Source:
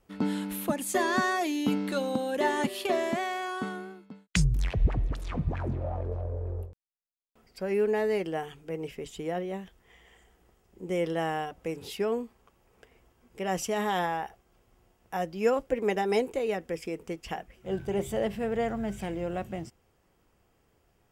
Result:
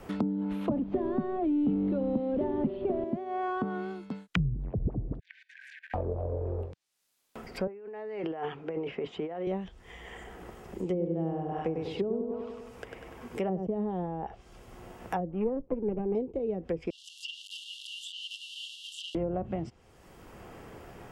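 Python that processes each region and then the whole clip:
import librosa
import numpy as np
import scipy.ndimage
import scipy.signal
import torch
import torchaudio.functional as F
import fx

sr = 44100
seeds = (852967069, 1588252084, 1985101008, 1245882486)

y = fx.chain(x, sr, fx.zero_step(step_db=-27.5),
    fx.lowpass(hz=3700.0, slope=24),
    fx.band_squash(depth_pct=70), at=(0.71, 3.04))
y = fx.chain(y, sr, fx.brickwall_highpass(low_hz=1500.0),
    fx.high_shelf(hz=10000.0, db=-8.5),
    fx.level_steps(step_db=22), at=(5.19, 5.94))
y = fx.chain(y, sr, fx.bandpass_edges(low_hz=200.0, high_hz=2100.0),
    fx.low_shelf(hz=390.0, db=-8.0),
    fx.over_compress(threshold_db=-43.0, ratio=-1.0), at=(7.67, 9.47))
y = fx.chain(y, sr, fx.highpass(hz=110.0, slope=6),
    fx.echo_feedback(ms=98, feedback_pct=50, wet_db=-5.0), at=(10.84, 13.67))
y = fx.chain(y, sr, fx.lower_of_two(delay_ms=0.33),
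    fx.lowpass(hz=2400.0, slope=24), at=(15.31, 16.15))
y = fx.chain(y, sr, fx.zero_step(step_db=-32.5),
    fx.brickwall_bandpass(low_hz=2700.0, high_hz=12000.0), at=(16.9, 19.15))
y = fx.env_lowpass_down(y, sr, base_hz=390.0, full_db=-26.5)
y = fx.dynamic_eq(y, sr, hz=1800.0, q=1.7, threshold_db=-59.0, ratio=4.0, max_db=-5)
y = fx.band_squash(y, sr, depth_pct=70)
y = F.gain(torch.from_numpy(y), 1.5).numpy()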